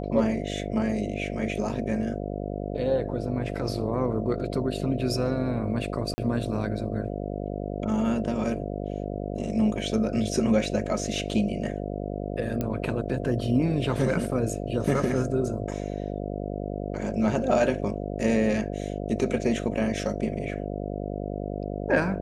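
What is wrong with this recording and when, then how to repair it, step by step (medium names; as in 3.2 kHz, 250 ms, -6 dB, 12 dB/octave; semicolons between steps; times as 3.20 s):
buzz 50 Hz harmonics 14 -32 dBFS
6.14–6.18 s: dropout 40 ms
12.61 s: pop -15 dBFS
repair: de-click; de-hum 50 Hz, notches 14; interpolate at 6.14 s, 40 ms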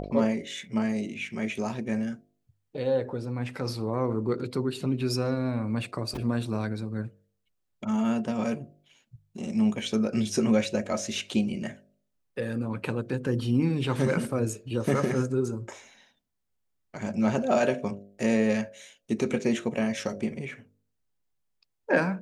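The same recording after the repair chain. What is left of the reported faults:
nothing left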